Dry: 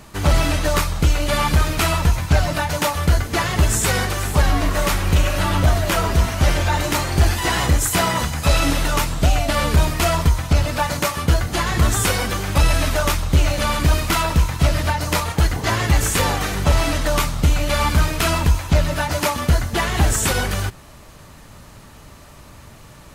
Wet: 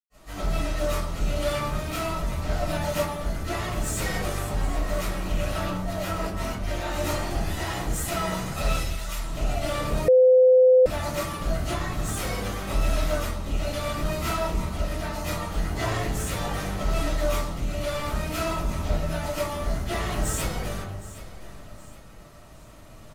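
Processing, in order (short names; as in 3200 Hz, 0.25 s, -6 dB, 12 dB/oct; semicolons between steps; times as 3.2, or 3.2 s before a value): 5.55–6.67 negative-ratio compressor -20 dBFS, ratio -0.5; 8.62–9.05 passive tone stack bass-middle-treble 10-0-10; soft clip -17 dBFS, distortion -10 dB; tremolo saw up 0.69 Hz, depth 35%; feedback echo 0.766 s, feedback 38%, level -16 dB; reverb RT60 0.80 s, pre-delay 0.1 s; 10.08–10.86 bleep 511 Hz -18 dBFS; gain +6 dB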